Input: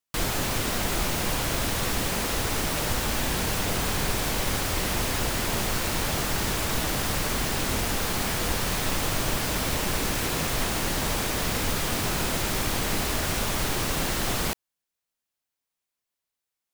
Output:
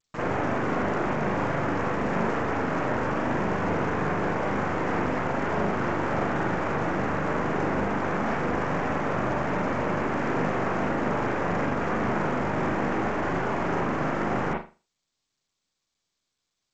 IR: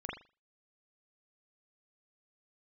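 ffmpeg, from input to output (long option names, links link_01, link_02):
-filter_complex "[0:a]asplit=2[link_01][link_02];[link_02]alimiter=limit=-21.5dB:level=0:latency=1,volume=2dB[link_03];[link_01][link_03]amix=inputs=2:normalize=0,adynamicsmooth=sensitivity=3:basefreq=540,acrossover=split=2900[link_04][link_05];[link_04]highpass=150,lowpass=2100[link_06];[link_05]aeval=exprs='abs(val(0))':channel_layout=same[link_07];[link_06][link_07]amix=inputs=2:normalize=0[link_08];[1:a]atrim=start_sample=2205[link_09];[link_08][link_09]afir=irnorm=-1:irlink=0,volume=-2.5dB" -ar 16000 -c:a g722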